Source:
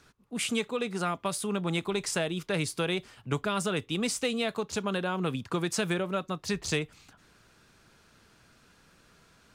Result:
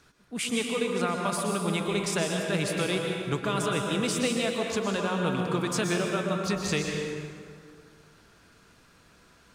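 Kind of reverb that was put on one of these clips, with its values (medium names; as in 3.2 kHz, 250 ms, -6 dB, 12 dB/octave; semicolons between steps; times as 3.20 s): plate-style reverb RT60 2.2 s, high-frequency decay 0.6×, pre-delay 105 ms, DRR 0.5 dB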